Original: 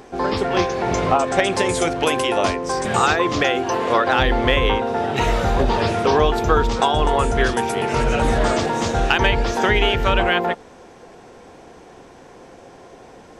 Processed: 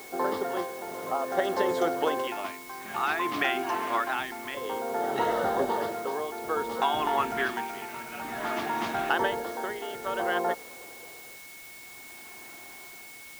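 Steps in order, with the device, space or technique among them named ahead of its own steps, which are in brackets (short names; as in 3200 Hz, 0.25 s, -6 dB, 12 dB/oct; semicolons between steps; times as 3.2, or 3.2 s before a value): shortwave radio (BPF 310–2900 Hz; tremolo 0.56 Hz, depth 73%; LFO notch square 0.22 Hz 500–2400 Hz; whine 2200 Hz -43 dBFS; white noise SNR 18 dB); gain -4 dB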